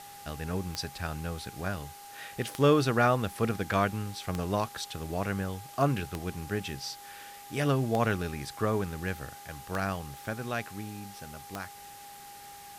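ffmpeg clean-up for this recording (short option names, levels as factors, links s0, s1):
-af "adeclick=t=4,bandreject=f=402.6:t=h:w=4,bandreject=f=805.2:t=h:w=4,bandreject=f=1207.8:t=h:w=4,bandreject=f=1610.4:t=h:w=4,bandreject=f=2013:t=h:w=4,bandreject=f=810:w=30,afwtdn=0.0032"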